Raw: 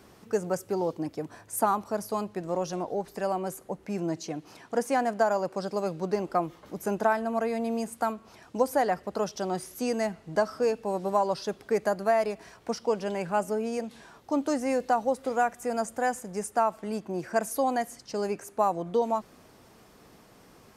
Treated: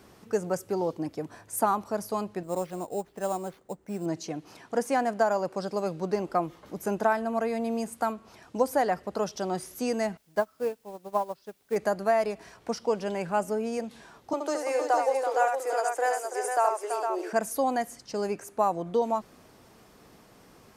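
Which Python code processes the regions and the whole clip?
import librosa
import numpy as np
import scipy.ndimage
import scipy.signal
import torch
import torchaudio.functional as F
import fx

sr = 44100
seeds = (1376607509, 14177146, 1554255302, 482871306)

y = fx.chain(x, sr, fx.high_shelf(hz=3600.0, db=-9.5),
    fx.sample_hold(seeds[0], rate_hz=7900.0, jitter_pct=0),
    fx.upward_expand(threshold_db=-42.0, expansion=1.5), at=(2.43, 4.06))
y = fx.chain(y, sr, fx.env_lowpass_down(base_hz=2300.0, full_db=-20.5),
    fx.quant_dither(seeds[1], bits=8, dither='triangular'),
    fx.upward_expand(threshold_db=-35.0, expansion=2.5), at=(10.17, 11.76))
y = fx.chain(y, sr, fx.steep_highpass(hz=320.0, slope=72),
    fx.echo_multitap(ms=(72, 332, 459), db=(-5.5, -8.0, -6.0)), at=(14.33, 17.33))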